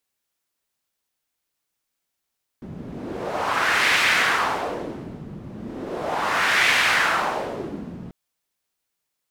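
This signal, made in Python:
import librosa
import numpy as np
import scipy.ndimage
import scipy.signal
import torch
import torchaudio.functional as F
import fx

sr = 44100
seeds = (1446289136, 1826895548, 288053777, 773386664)

y = fx.wind(sr, seeds[0], length_s=5.49, low_hz=180.0, high_hz=2100.0, q=1.8, gusts=2, swing_db=18)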